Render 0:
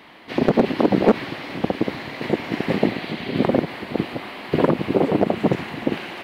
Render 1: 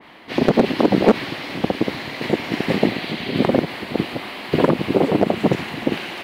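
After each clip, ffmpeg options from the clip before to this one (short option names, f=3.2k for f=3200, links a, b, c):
-af "adynamicequalizer=threshold=0.00891:dfrequency=2500:dqfactor=0.7:tfrequency=2500:tqfactor=0.7:attack=5:release=100:ratio=0.375:range=2.5:mode=boostabove:tftype=highshelf,volume=1.5dB"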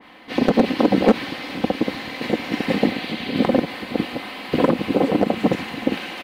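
-af "aecho=1:1:3.9:0.44,volume=-2dB"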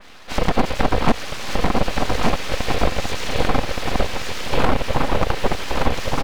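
-filter_complex "[0:a]asplit=2[a][b];[b]acompressor=threshold=-24dB:ratio=6,volume=-1dB[c];[a][c]amix=inputs=2:normalize=0,aeval=exprs='abs(val(0))':c=same,aecho=1:1:1172:0.708,volume=-1dB"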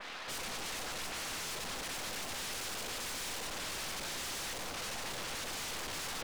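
-filter_complex "[0:a]asoftclip=type=hard:threshold=-17dB,asplit=2[a][b];[b]highpass=f=720:p=1,volume=17dB,asoftclip=type=tanh:threshold=-17dB[c];[a][c]amix=inputs=2:normalize=0,lowpass=f=4k:p=1,volume=-6dB,aeval=exprs='0.0398*(abs(mod(val(0)/0.0398+3,4)-2)-1)':c=same,volume=-7.5dB"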